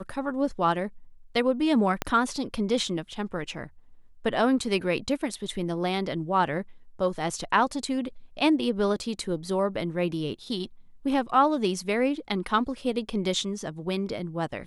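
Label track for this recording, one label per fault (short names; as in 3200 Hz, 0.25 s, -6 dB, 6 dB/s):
2.020000	2.020000	pop -11 dBFS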